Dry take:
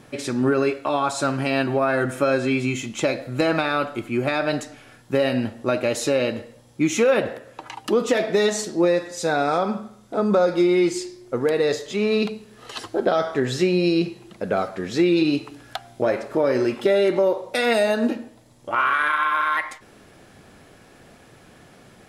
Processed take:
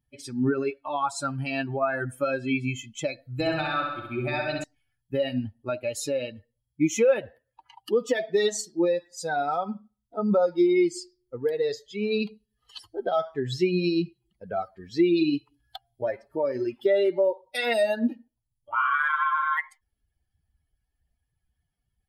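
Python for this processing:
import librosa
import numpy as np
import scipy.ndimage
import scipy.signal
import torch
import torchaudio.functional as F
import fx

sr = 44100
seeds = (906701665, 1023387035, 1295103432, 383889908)

y = fx.bin_expand(x, sr, power=2.0)
y = fx.room_flutter(y, sr, wall_m=11.1, rt60_s=1.0, at=(3.33, 4.64))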